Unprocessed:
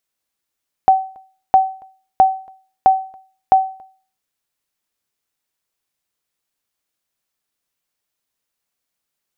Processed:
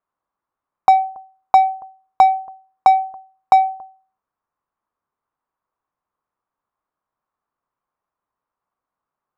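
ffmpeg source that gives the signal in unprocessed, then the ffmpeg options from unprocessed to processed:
-f lavfi -i "aevalsrc='0.708*(sin(2*PI*763*mod(t,0.66))*exp(-6.91*mod(t,0.66)/0.42)+0.0316*sin(2*PI*763*max(mod(t,0.66)-0.28,0))*exp(-6.91*max(mod(t,0.66)-0.28,0)/0.42))':d=3.3:s=44100"
-filter_complex "[0:a]lowpass=f=1.1k:t=q:w=3.4,acrossover=split=780[a][b];[a]asoftclip=type=tanh:threshold=-19dB[c];[c][b]amix=inputs=2:normalize=0"

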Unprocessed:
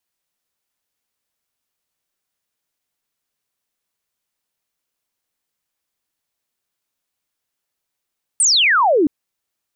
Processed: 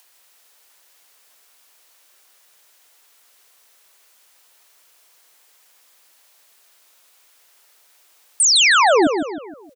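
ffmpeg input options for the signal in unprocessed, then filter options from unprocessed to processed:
-f lavfi -i "aevalsrc='0.282*clip(t/0.002,0,1)*clip((0.67-t)/0.002,0,1)*sin(2*PI*9300*0.67/log(270/9300)*(exp(log(270/9300)*t/0.67)-1))':d=0.67:s=44100"
-filter_complex "[0:a]acrossover=split=380[a][b];[b]acompressor=mode=upward:threshold=-37dB:ratio=2.5[c];[a][c]amix=inputs=2:normalize=0,aecho=1:1:156|312|468|624|780:0.447|0.188|0.0788|0.0331|0.0139"

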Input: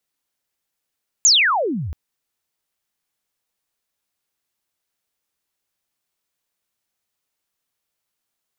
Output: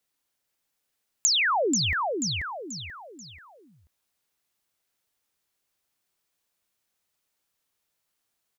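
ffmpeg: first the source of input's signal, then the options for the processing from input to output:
-f lavfi -i "aevalsrc='pow(10,(-8.5-16.5*t/0.68)/20)*sin(2*PI*7400*0.68/log(66/7400)*(exp(log(66/7400)*t/0.68)-1))':d=0.68:s=44100"
-af "aecho=1:1:485|970|1455|1940:0.422|0.156|0.0577|0.0214,acompressor=threshold=-22dB:ratio=6"

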